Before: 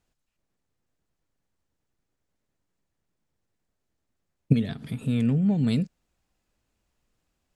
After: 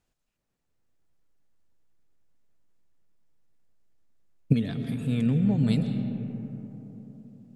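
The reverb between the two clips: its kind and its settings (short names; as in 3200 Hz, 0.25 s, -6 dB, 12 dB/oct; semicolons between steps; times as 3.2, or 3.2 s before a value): digital reverb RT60 3.9 s, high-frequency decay 0.3×, pre-delay 90 ms, DRR 6.5 dB; gain -1.5 dB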